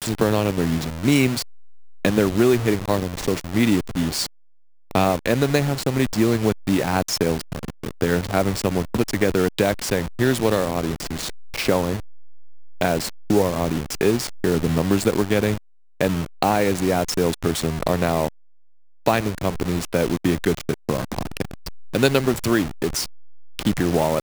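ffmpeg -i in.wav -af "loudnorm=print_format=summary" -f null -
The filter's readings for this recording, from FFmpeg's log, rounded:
Input Integrated:    -22.1 LUFS
Input True Peak:      -2.1 dBTP
Input LRA:             3.0 LU
Input Threshold:     -32.2 LUFS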